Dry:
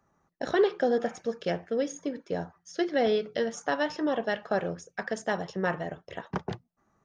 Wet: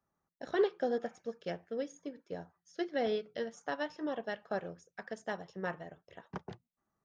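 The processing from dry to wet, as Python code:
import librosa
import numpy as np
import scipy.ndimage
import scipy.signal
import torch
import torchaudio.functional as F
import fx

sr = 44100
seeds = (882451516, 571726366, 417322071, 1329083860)

y = fx.upward_expand(x, sr, threshold_db=-37.0, expansion=1.5)
y = F.gain(torch.from_numpy(y), -5.0).numpy()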